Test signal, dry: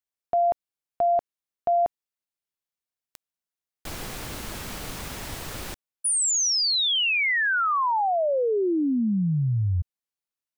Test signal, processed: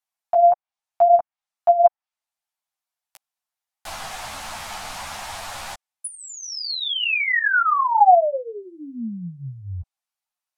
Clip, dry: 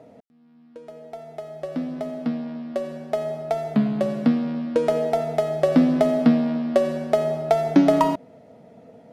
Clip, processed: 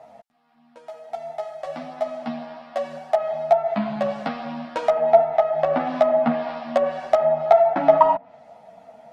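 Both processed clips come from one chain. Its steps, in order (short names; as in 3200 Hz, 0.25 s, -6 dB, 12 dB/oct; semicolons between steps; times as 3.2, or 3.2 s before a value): resonant low shelf 550 Hz -10 dB, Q 3; treble ducked by the level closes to 1600 Hz, closed at -18.5 dBFS; ensemble effect; gain +6.5 dB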